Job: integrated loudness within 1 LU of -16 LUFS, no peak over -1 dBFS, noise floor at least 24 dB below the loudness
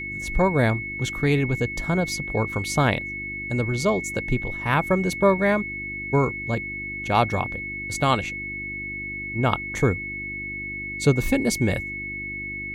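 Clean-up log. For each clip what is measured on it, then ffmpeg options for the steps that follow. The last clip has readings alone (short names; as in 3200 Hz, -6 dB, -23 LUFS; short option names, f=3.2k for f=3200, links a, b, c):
hum 50 Hz; harmonics up to 350 Hz; hum level -38 dBFS; steady tone 2200 Hz; tone level -30 dBFS; loudness -24.5 LUFS; peak -6.0 dBFS; loudness target -16.0 LUFS
-> -af "bandreject=f=50:t=h:w=4,bandreject=f=100:t=h:w=4,bandreject=f=150:t=h:w=4,bandreject=f=200:t=h:w=4,bandreject=f=250:t=h:w=4,bandreject=f=300:t=h:w=4,bandreject=f=350:t=h:w=4"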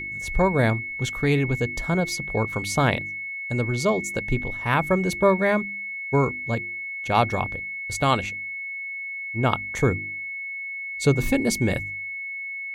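hum none; steady tone 2200 Hz; tone level -30 dBFS
-> -af "bandreject=f=2.2k:w=30"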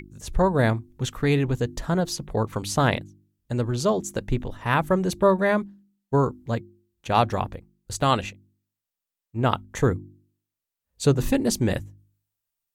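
steady tone none; loudness -24.5 LUFS; peak -6.0 dBFS; loudness target -16.0 LUFS
-> -af "volume=8.5dB,alimiter=limit=-1dB:level=0:latency=1"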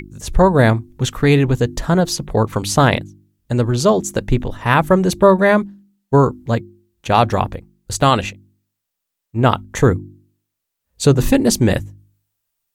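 loudness -16.5 LUFS; peak -1.0 dBFS; noise floor -79 dBFS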